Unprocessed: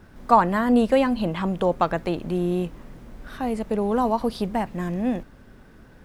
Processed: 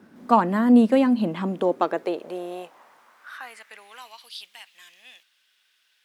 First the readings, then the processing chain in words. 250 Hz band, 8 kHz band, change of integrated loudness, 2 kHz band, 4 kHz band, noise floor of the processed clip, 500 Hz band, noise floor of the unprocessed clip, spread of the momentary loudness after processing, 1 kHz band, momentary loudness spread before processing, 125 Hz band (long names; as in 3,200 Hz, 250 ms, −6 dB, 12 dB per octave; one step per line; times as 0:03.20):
+1.5 dB, −3.0 dB, +2.0 dB, −3.0 dB, −1.0 dB, −67 dBFS, −2.5 dB, −50 dBFS, 23 LU, −3.0 dB, 10 LU, −6.5 dB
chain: harmonic generator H 3 −25 dB, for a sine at −3.5 dBFS
high-pass filter sweep 230 Hz → 3,100 Hz, 0:01.41–0:04.26
level −2 dB